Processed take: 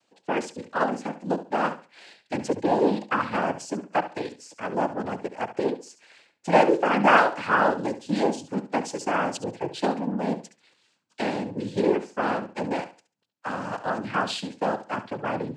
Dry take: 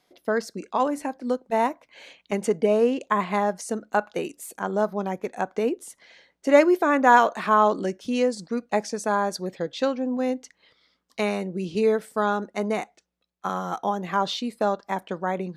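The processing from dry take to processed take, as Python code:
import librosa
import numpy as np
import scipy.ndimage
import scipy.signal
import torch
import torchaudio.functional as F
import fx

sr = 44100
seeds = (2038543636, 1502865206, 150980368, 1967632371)

y = fx.noise_vocoder(x, sr, seeds[0], bands=8)
y = fx.room_flutter(y, sr, wall_m=11.9, rt60_s=0.32)
y = y * 10.0 ** (-1.5 / 20.0)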